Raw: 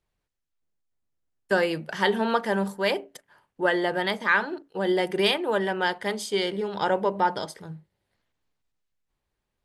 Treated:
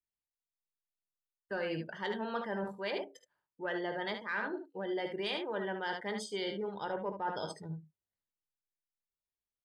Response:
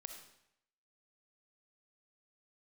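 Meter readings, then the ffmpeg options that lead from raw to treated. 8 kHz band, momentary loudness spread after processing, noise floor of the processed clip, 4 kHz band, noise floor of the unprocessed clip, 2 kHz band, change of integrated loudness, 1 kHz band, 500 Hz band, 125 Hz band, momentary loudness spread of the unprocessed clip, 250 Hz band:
−12.0 dB, 5 LU, below −85 dBFS, −12.0 dB, −82 dBFS, −12.5 dB, −12.0 dB, −12.5 dB, −11.5 dB, −9.5 dB, 9 LU, −11.0 dB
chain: -af "afftdn=noise_reduction=21:noise_floor=-38,acontrast=43,aecho=1:1:19|53|74:0.211|0.126|0.355,areverse,acompressor=threshold=-26dB:ratio=4,areverse,volume=-9dB"

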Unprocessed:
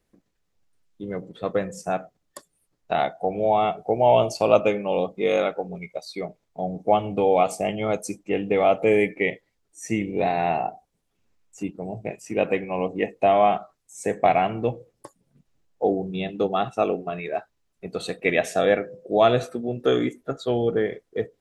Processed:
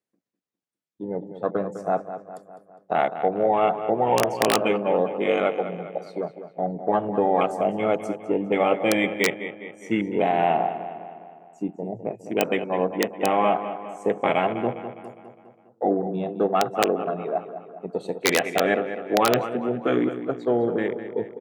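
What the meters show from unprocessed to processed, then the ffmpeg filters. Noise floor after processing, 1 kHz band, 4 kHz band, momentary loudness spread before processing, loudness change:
−65 dBFS, 0.0 dB, +2.5 dB, 14 LU, −0.5 dB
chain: -filter_complex "[0:a]afftfilt=real='re*lt(hypot(re,im),0.891)':imag='im*lt(hypot(re,im),0.891)':win_size=1024:overlap=0.75,afwtdn=0.0224,asplit=2[link_01][link_02];[link_02]adelay=204,lowpass=frequency=4400:poles=1,volume=-11dB,asplit=2[link_03][link_04];[link_04]adelay=204,lowpass=frequency=4400:poles=1,volume=0.55,asplit=2[link_05][link_06];[link_06]adelay=204,lowpass=frequency=4400:poles=1,volume=0.55,asplit=2[link_07][link_08];[link_08]adelay=204,lowpass=frequency=4400:poles=1,volume=0.55,asplit=2[link_09][link_10];[link_10]adelay=204,lowpass=frequency=4400:poles=1,volume=0.55,asplit=2[link_11][link_12];[link_12]adelay=204,lowpass=frequency=4400:poles=1,volume=0.55[link_13];[link_01][link_03][link_05][link_07][link_09][link_11][link_13]amix=inputs=7:normalize=0,aeval=exprs='(mod(3.55*val(0)+1,2)-1)/3.55':channel_layout=same,highpass=180,volume=2.5dB"

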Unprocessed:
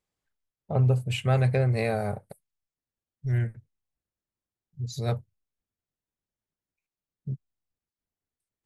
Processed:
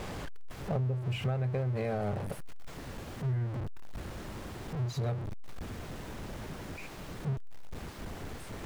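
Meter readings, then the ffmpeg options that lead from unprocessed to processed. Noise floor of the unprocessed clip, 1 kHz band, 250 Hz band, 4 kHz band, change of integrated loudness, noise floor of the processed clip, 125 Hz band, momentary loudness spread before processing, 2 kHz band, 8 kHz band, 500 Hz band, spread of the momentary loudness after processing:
below −85 dBFS, −4.5 dB, −3.0 dB, −4.5 dB, −9.5 dB, −45 dBFS, −6.0 dB, 14 LU, −5.5 dB, −2.0 dB, −5.5 dB, 13 LU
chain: -af "aeval=exprs='val(0)+0.5*0.0473*sgn(val(0))':channel_layout=same,lowpass=frequency=1300:poles=1,acompressor=threshold=-26dB:ratio=10,volume=-2.5dB"

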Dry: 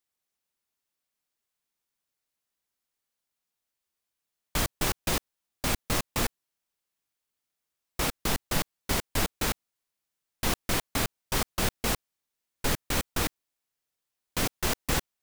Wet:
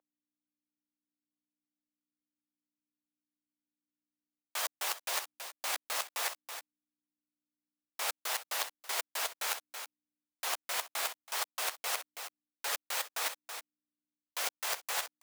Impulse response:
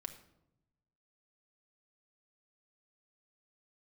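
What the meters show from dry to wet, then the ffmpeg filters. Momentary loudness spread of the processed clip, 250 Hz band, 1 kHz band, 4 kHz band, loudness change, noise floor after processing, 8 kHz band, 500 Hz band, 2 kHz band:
12 LU, −30.5 dB, −4.5 dB, −4.0 dB, −5.5 dB, below −85 dBFS, −3.5 dB, −10.5 dB, −4.0 dB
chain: -filter_complex "[0:a]asplit=2[link_01][link_02];[link_02]alimiter=limit=-20dB:level=0:latency=1:release=66,volume=2dB[link_03];[link_01][link_03]amix=inputs=2:normalize=0,flanger=delay=7.9:depth=7.4:regen=-43:speed=0.24:shape=triangular,aeval=exprs='val(0)*gte(abs(val(0)),0.0355)':channel_layout=same,aecho=1:1:327:0.112,aeval=exprs='val(0)+0.000891*(sin(2*PI*60*n/s)+sin(2*PI*2*60*n/s)/2+sin(2*PI*3*60*n/s)/3+sin(2*PI*4*60*n/s)/4+sin(2*PI*5*60*n/s)/5)':channel_layout=same,highpass=frequency=620:width=0.5412,highpass=frequency=620:width=1.3066,areverse,acompressor=threshold=-38dB:ratio=5,areverse,volume=5dB"

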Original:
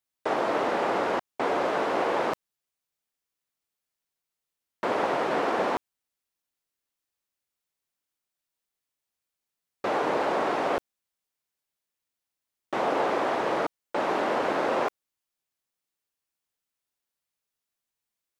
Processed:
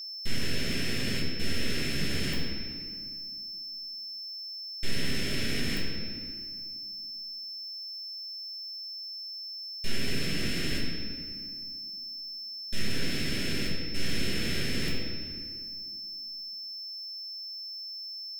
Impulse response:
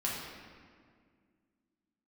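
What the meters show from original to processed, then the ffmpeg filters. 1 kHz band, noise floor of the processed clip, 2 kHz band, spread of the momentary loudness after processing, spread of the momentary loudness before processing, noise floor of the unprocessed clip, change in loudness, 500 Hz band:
−23.5 dB, −40 dBFS, −2.0 dB, 6 LU, 5 LU, below −85 dBFS, −6.5 dB, −14.0 dB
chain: -filter_complex "[0:a]highpass=230,aemphasis=mode=production:type=75fm,acrossover=split=4400[link_01][link_02];[link_01]aeval=exprs='abs(val(0))':channel_layout=same[link_03];[link_03][link_02]amix=inputs=2:normalize=0,asuperstop=centerf=960:order=4:qfactor=0.61,asoftclip=type=tanh:threshold=-25dB[link_04];[1:a]atrim=start_sample=2205[link_05];[link_04][link_05]afir=irnorm=-1:irlink=0,aeval=exprs='val(0)+0.0141*sin(2*PI*5300*n/s)':channel_layout=same"

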